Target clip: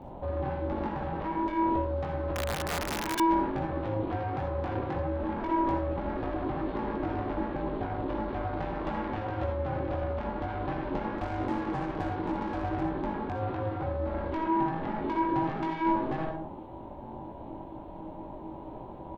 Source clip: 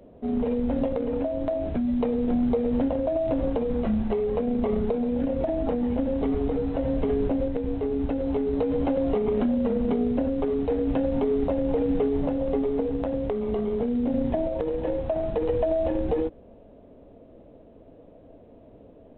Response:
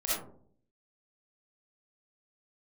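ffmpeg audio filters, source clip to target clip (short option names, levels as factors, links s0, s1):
-filter_complex "[0:a]asoftclip=type=tanh:threshold=0.0398,asplit=2[s0][s1];[s1]adelay=20,volume=0.631[s2];[s0][s2]amix=inputs=2:normalize=0,asettb=1/sr,asplit=3[s3][s4][s5];[s3]atrim=end=11.174[s6];[s4]atrim=start=11.17:end=12.85,asetpts=PTS-STARTPTS,afade=t=in:d=0.004:c=qsin,afade=t=out:st=1.676:d=0.004:c=qsin,aeval=exprs='0.0668*(cos(1*acos(clip(val(0)/0.0668,-1,1)))-cos(1*PI/2))+0.00299*(cos(8*acos(clip(val(0)/0.0668,-1,1)))-cos(8*PI/2))':c=same[s7];[s5]atrim=start=12.846[s8];[s6][s7]acrossfade=d=0.004:c1=hsin:c2=qsin[s9];[s9][s8]acrossfade=d=0.004:c1=qsin:c2=hsin,alimiter=level_in=2.37:limit=0.0631:level=0:latency=1:release=36,volume=0.422,asplit=2[s10][s11];[1:a]atrim=start_sample=2205,afade=t=out:st=0.27:d=0.01,atrim=end_sample=12348[s12];[s11][s12]afir=irnorm=-1:irlink=0,volume=0.422[s13];[s10][s13]amix=inputs=2:normalize=0,aeval=exprs='val(0)*sin(2*PI*320*n/s)':c=same,asettb=1/sr,asplit=3[s14][s15][s16];[s14]atrim=end=2.354[s17];[s15]atrim=start=2.35:end=3.2,asetpts=PTS-STARTPTS,afade=t=in:d=0.004:c=qsin,afade=t=out:st=0.846:d=0.004:c=qsin,aeval=exprs='(mod(28.2*val(0)+1,2)-1)/28.2':c=same[s18];[s16]atrim=start=3.196[s19];[s17][s18]acrossfade=d=0.004:c1=hsin:c2=qsin[s20];[s20][s19]acrossfade=d=0.004:c1=qsin:c2=hsin,volume=1.68"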